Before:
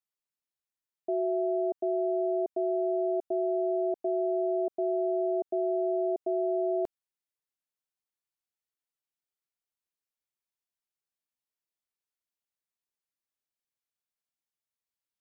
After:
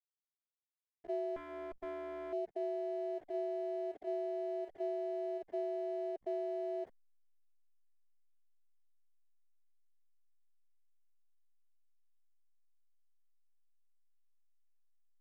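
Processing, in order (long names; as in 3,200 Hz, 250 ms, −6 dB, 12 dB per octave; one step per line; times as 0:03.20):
spectrum averaged block by block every 50 ms
parametric band 170 Hz −7 dB 2.3 octaves
0:01.36–0:02.33: tube saturation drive 31 dB, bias 0.65
slack as between gear wheels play −44.5 dBFS
reverb reduction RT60 0.81 s
level −4.5 dB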